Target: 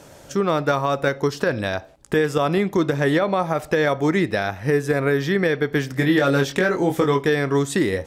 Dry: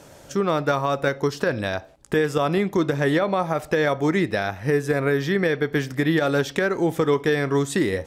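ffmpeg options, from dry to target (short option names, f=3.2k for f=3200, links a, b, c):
-filter_complex "[0:a]asettb=1/sr,asplit=3[a][b][c];[a]atrim=end=5.934[d];[b]atrim=start=5.93:end=7.27,asetpts=PTS-STARTPTS,afade=t=in:d=0.004:c=qsin,afade=t=out:st=1.336:d=0.004:c=qsin,asplit=2[e][f];[f]adelay=22,volume=-4dB[g];[e][g]amix=inputs=2:normalize=0,atrim=end_sample=59094[h];[c]atrim=start=7.266[i];[d][h]acrossfade=d=0.004:c1=hsin:c2=qsin[j];[j][i]acrossfade=d=0.004:c1=qsin:c2=hsin,volume=1.5dB"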